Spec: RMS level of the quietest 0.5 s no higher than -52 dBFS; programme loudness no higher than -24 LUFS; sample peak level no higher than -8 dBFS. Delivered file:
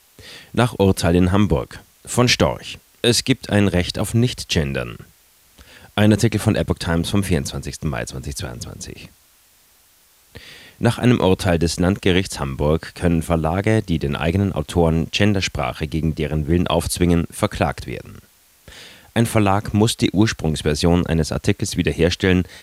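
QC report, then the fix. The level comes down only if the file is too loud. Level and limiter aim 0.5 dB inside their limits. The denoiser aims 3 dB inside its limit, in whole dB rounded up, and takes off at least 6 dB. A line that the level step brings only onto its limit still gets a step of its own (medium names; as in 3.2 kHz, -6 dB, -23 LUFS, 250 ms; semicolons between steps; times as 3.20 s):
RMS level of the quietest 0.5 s -55 dBFS: pass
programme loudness -19.5 LUFS: fail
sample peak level -3.0 dBFS: fail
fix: trim -5 dB; peak limiter -8.5 dBFS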